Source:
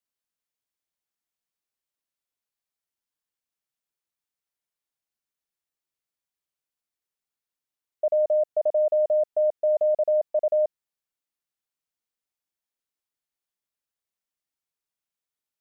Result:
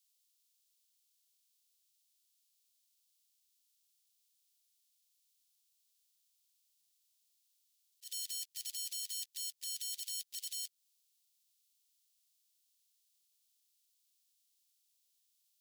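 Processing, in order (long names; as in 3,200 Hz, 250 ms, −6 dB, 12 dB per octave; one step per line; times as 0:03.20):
spectral magnitudes quantised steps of 30 dB
in parallel at −5.5 dB: log-companded quantiser 4 bits
on the sum: inverse Chebyshev high-pass filter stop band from 560 Hz, stop band 80 dB
downward compressor 6 to 1, threshold −50 dBFS, peak gain reduction 10 dB
brickwall limiter −44 dBFS, peak gain reduction 9 dB
volume swells 109 ms
level +14 dB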